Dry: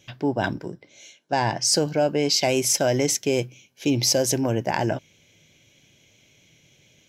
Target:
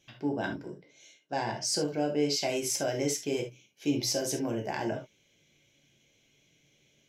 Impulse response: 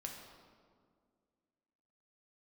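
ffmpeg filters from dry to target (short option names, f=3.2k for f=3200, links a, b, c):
-filter_complex "[1:a]atrim=start_sample=2205,afade=t=out:st=0.21:d=0.01,atrim=end_sample=9702,asetrate=88200,aresample=44100[a];[0:a][a]afir=irnorm=-1:irlink=0"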